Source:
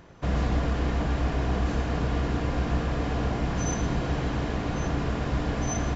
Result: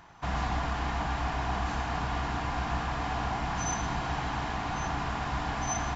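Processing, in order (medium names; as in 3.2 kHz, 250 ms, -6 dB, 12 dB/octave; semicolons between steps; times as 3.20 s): resonant low shelf 650 Hz -7 dB, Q 3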